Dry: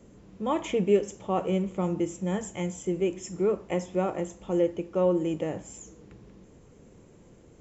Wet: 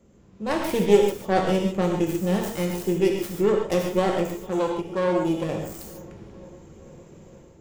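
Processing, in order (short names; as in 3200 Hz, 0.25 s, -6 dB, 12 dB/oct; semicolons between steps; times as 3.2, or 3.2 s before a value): tracing distortion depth 0.46 ms; AGC gain up to 9 dB; 4.35–5.49 tube stage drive 12 dB, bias 0.65; on a send: darkening echo 0.458 s, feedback 73%, low-pass 2100 Hz, level -22.5 dB; on the sum: non-linear reverb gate 0.17 s flat, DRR 1 dB; gain -5.5 dB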